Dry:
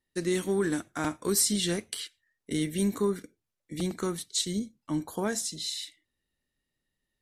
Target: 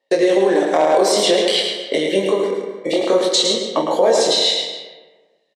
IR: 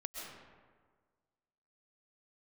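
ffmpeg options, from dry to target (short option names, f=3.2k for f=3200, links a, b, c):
-filter_complex "[0:a]agate=range=-12dB:threshold=-59dB:ratio=16:detection=peak,lowpass=4k,equalizer=f=1.4k:w=3.3:g=-12.5,acompressor=threshold=-39dB:ratio=4,highpass=f=550:t=q:w=5.2,atempo=1.3,flanger=delay=18:depth=7.8:speed=0.55,aecho=1:1:108:0.531,asplit=2[a][b];[1:a]atrim=start_sample=2205,asetrate=52920,aresample=44100,adelay=31[c];[b][c]afir=irnorm=-1:irlink=0,volume=-2.5dB[d];[a][d]amix=inputs=2:normalize=0,alimiter=level_in=32.5dB:limit=-1dB:release=50:level=0:latency=1,volume=-4.5dB"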